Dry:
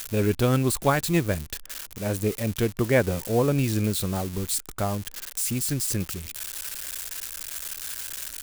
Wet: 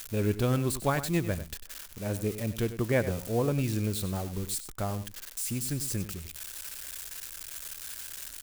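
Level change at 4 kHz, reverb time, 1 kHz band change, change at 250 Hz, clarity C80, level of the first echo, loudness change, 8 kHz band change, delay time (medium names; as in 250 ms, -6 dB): -6.5 dB, no reverb, -6.0 dB, -5.0 dB, no reverb, -12.5 dB, -5.5 dB, -6.5 dB, 97 ms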